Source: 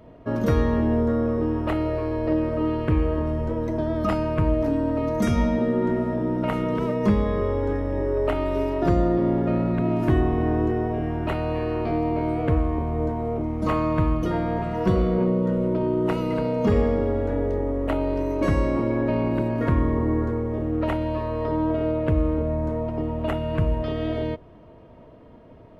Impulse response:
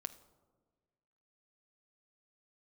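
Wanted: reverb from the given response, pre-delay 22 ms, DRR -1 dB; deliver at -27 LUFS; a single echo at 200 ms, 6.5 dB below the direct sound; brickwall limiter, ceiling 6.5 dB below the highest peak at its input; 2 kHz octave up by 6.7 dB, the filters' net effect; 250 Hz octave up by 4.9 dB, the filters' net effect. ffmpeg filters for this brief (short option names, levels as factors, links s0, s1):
-filter_complex "[0:a]equalizer=f=250:t=o:g=6,equalizer=f=2000:t=o:g=8,alimiter=limit=0.224:level=0:latency=1,aecho=1:1:200:0.473,asplit=2[s0][s1];[1:a]atrim=start_sample=2205,adelay=22[s2];[s1][s2]afir=irnorm=-1:irlink=0,volume=1.58[s3];[s0][s3]amix=inputs=2:normalize=0,volume=0.316"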